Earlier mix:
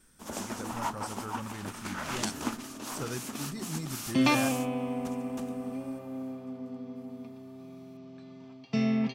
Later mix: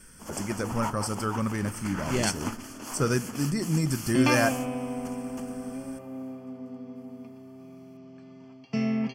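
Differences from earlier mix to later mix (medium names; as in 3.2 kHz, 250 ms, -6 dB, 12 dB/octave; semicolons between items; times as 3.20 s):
speech +11.5 dB; master: add Butterworth band-stop 3.8 kHz, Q 4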